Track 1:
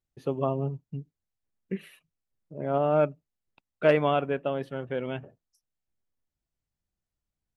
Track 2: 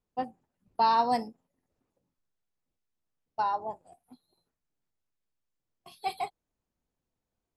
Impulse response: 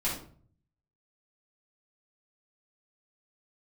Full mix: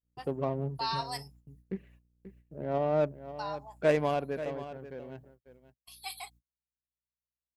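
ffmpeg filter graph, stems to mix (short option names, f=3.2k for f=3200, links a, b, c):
-filter_complex "[0:a]bandreject=f=1.3k:w=6.2,aeval=exprs='val(0)+0.002*(sin(2*PI*60*n/s)+sin(2*PI*2*60*n/s)/2+sin(2*PI*3*60*n/s)/3+sin(2*PI*4*60*n/s)/4+sin(2*PI*5*60*n/s)/5)':c=same,adynamicsmooth=sensitivity=3:basefreq=1.1k,volume=-4dB,afade=t=out:st=4.04:d=0.75:silence=0.398107,asplit=2[a][b];[b]volume=-13dB[c];[1:a]crystalizer=i=3:c=0,highpass=1.2k,volume=-5.5dB[d];[c]aecho=0:1:535:1[e];[a][d][e]amix=inputs=3:normalize=0,agate=range=-38dB:threshold=-56dB:ratio=16:detection=peak"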